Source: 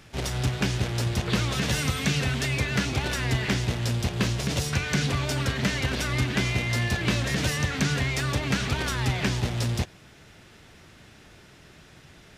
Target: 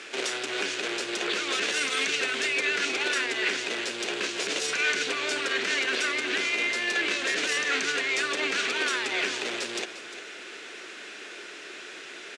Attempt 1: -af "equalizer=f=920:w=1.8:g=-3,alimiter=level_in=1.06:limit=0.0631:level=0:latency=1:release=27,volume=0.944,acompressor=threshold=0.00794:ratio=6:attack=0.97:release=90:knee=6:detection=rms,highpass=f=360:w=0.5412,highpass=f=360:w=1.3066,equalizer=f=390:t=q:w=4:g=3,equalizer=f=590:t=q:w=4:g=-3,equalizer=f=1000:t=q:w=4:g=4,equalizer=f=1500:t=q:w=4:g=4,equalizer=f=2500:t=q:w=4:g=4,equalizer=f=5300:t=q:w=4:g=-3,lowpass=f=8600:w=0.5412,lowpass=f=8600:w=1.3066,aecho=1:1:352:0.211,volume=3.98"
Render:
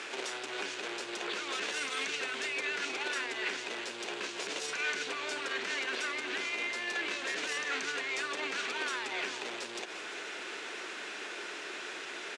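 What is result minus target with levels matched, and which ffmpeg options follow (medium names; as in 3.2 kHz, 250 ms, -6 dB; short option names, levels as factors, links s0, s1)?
compression: peak gain reduction +8.5 dB; 1 kHz band +4.0 dB
-af "equalizer=f=920:w=1.8:g=-10,alimiter=level_in=1.06:limit=0.0631:level=0:latency=1:release=27,volume=0.944,acompressor=threshold=0.0266:ratio=6:attack=0.97:release=90:knee=6:detection=rms,highpass=f=360:w=0.5412,highpass=f=360:w=1.3066,equalizer=f=390:t=q:w=4:g=3,equalizer=f=590:t=q:w=4:g=-3,equalizer=f=1000:t=q:w=4:g=4,equalizer=f=1500:t=q:w=4:g=4,equalizer=f=2500:t=q:w=4:g=4,equalizer=f=5300:t=q:w=4:g=-3,lowpass=f=8600:w=0.5412,lowpass=f=8600:w=1.3066,aecho=1:1:352:0.211,volume=3.98"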